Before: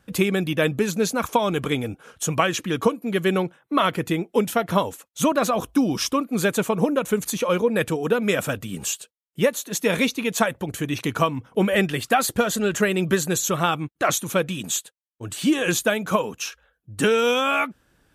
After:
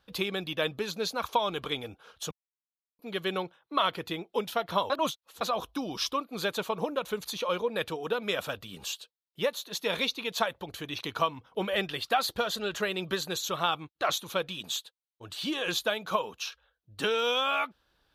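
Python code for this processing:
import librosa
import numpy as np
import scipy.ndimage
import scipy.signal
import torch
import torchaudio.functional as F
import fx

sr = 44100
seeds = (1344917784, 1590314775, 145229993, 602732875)

y = fx.edit(x, sr, fx.silence(start_s=2.31, length_s=0.68),
    fx.reverse_span(start_s=4.9, length_s=0.51), tone=tone)
y = fx.graphic_eq(y, sr, hz=(125, 250, 1000, 2000, 4000, 8000), db=(-7, -7, 4, -4, 12, -11))
y = F.gain(torch.from_numpy(y), -8.0).numpy()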